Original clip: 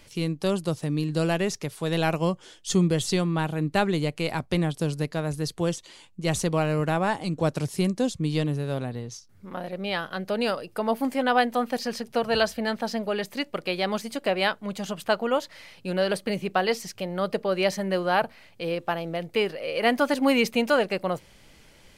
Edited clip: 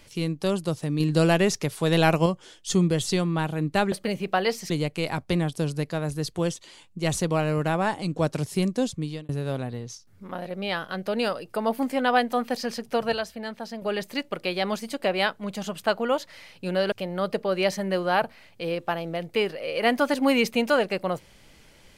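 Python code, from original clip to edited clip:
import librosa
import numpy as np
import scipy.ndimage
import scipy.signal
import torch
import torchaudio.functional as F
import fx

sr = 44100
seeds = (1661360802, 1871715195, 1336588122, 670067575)

y = fx.edit(x, sr, fx.clip_gain(start_s=1.0, length_s=1.26, db=4.5),
    fx.fade_out_span(start_s=8.12, length_s=0.39),
    fx.clip_gain(start_s=12.34, length_s=0.7, db=-7.0),
    fx.move(start_s=16.14, length_s=0.78, to_s=3.92), tone=tone)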